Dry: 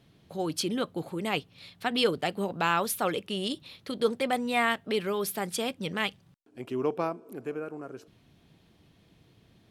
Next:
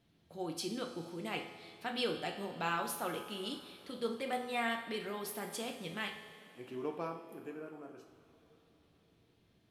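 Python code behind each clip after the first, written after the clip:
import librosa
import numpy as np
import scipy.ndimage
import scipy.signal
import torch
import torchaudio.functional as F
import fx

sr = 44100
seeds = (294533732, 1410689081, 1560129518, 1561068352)

y = fx.comb_fb(x, sr, f0_hz=84.0, decay_s=1.6, harmonics='all', damping=0.0, mix_pct=70)
y = fx.rev_double_slope(y, sr, seeds[0], early_s=0.47, late_s=4.3, knee_db=-19, drr_db=2.5)
y = y * librosa.db_to_amplitude(-1.5)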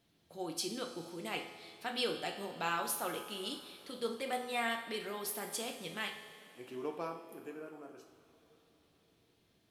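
y = fx.bass_treble(x, sr, bass_db=-5, treble_db=5)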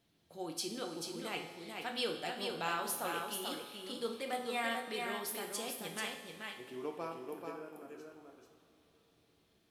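y = x + 10.0 ** (-4.5 / 20.0) * np.pad(x, (int(437 * sr / 1000.0), 0))[:len(x)]
y = y * librosa.db_to_amplitude(-1.5)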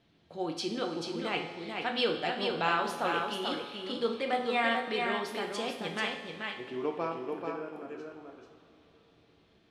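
y = scipy.signal.sosfilt(scipy.signal.butter(2, 3800.0, 'lowpass', fs=sr, output='sos'), x)
y = y * librosa.db_to_amplitude(8.0)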